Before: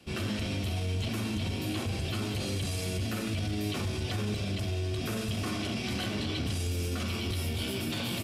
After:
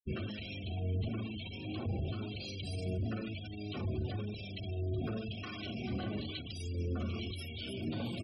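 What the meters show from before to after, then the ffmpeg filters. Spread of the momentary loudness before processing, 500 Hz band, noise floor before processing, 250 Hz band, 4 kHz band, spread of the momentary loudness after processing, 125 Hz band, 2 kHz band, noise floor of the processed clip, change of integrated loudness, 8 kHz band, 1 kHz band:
1 LU, −5.5 dB, −34 dBFS, −6.0 dB, −9.0 dB, 5 LU, −5.5 dB, −9.5 dB, −44 dBFS, −6.5 dB, below −15 dB, −8.5 dB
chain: -filter_complex "[0:a]afftfilt=real='re*gte(hypot(re,im),0.02)':imag='im*gte(hypot(re,im),0.02)':win_size=1024:overlap=0.75,alimiter=level_in=4dB:limit=-24dB:level=0:latency=1:release=258,volume=-4dB,acrossover=split=1300[link_01][link_02];[link_01]aeval=exprs='val(0)*(1-0.7/2+0.7/2*cos(2*PI*1*n/s))':channel_layout=same[link_03];[link_02]aeval=exprs='val(0)*(1-0.7/2-0.7/2*cos(2*PI*1*n/s))':channel_layout=same[link_04];[link_03][link_04]amix=inputs=2:normalize=0,volume=1dB"

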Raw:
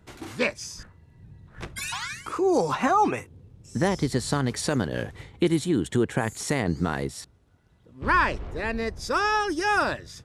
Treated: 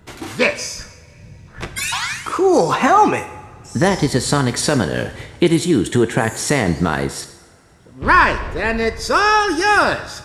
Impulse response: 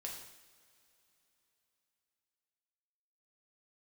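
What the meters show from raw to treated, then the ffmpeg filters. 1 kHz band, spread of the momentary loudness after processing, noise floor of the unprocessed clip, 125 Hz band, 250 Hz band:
+9.5 dB, 14 LU, −58 dBFS, +8.0 dB, +8.0 dB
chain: -filter_complex "[0:a]acontrast=39,asplit=2[link_01][link_02];[1:a]atrim=start_sample=2205,lowshelf=frequency=310:gain=-11[link_03];[link_02][link_03]afir=irnorm=-1:irlink=0,volume=-0.5dB[link_04];[link_01][link_04]amix=inputs=2:normalize=0,volume=1dB"

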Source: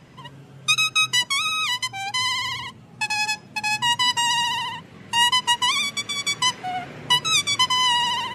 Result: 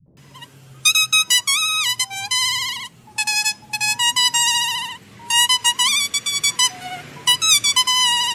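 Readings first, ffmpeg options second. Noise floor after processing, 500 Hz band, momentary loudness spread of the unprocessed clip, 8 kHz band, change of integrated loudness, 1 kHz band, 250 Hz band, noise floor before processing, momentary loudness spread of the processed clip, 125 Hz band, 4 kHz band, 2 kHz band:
−48 dBFS, can't be measured, 11 LU, +9.5 dB, +4.5 dB, −1.5 dB, −3.0 dB, −46 dBFS, 10 LU, −2.5 dB, +4.5 dB, +2.0 dB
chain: -filter_complex "[0:a]acrossover=split=180|600[link_01][link_02][link_03];[link_02]adelay=60[link_04];[link_03]adelay=170[link_05];[link_01][link_04][link_05]amix=inputs=3:normalize=0,acontrast=28,crystalizer=i=3:c=0,volume=-6dB"

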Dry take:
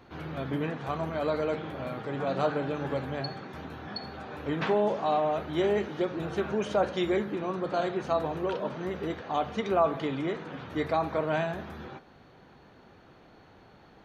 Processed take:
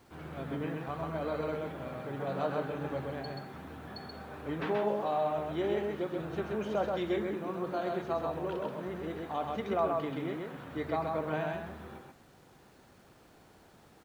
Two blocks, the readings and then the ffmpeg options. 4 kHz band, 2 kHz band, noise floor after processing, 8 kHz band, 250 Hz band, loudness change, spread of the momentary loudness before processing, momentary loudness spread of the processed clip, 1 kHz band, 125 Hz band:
−7.0 dB, −5.5 dB, −60 dBFS, can't be measured, −4.5 dB, −4.5 dB, 12 LU, 12 LU, −4.5 dB, −4.0 dB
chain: -af "highshelf=frequency=5400:gain=-10.5,acrusher=bits=9:mix=0:aa=0.000001,aecho=1:1:130:0.708,volume=-6dB"

